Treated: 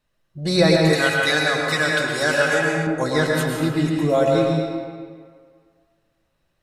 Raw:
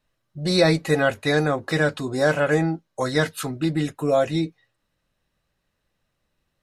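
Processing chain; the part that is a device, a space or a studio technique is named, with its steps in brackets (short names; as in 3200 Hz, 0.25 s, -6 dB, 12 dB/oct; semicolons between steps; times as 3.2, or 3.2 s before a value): stairwell (reverb RT60 1.9 s, pre-delay 0.102 s, DRR -1 dB); 0.93–2.87 tilt shelf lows -7.5 dB, about 1100 Hz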